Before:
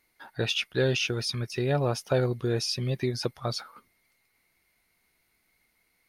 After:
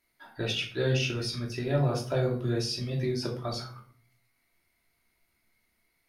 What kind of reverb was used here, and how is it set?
shoebox room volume 450 m³, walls furnished, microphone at 2.9 m; gain -7 dB

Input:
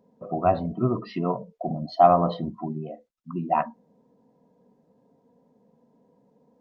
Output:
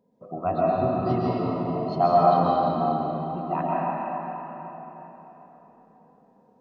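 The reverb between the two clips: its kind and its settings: digital reverb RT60 4.1 s, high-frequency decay 0.7×, pre-delay 90 ms, DRR -7 dB; gain -6 dB

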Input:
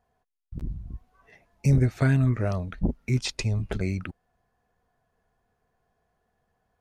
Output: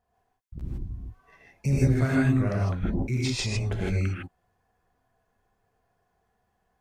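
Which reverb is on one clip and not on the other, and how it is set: non-linear reverb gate 0.18 s rising, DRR -5 dB; gain -4.5 dB

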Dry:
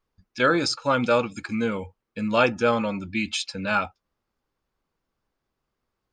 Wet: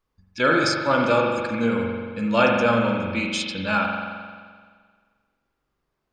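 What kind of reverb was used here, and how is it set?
spring tank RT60 1.7 s, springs 43 ms, chirp 50 ms, DRR 0 dB

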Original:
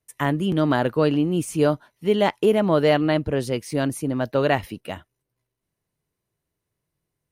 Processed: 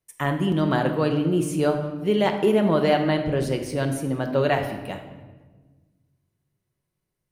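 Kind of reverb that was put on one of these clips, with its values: shoebox room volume 950 m³, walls mixed, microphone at 1 m; gain -2.5 dB

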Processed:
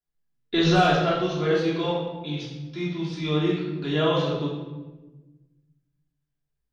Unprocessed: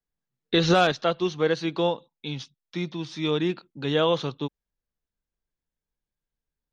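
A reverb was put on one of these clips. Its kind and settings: shoebox room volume 650 m³, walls mixed, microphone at 3.1 m; gain -7 dB

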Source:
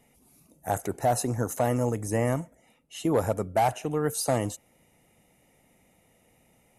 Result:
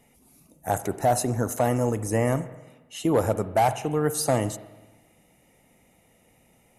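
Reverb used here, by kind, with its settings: spring tank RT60 1.2 s, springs 46/54 ms, chirp 40 ms, DRR 13.5 dB; gain +2.5 dB

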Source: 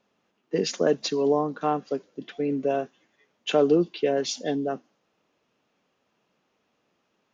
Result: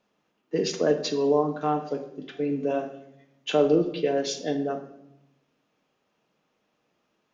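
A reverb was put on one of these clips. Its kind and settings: shoebox room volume 230 m³, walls mixed, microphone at 0.53 m; gain -2 dB

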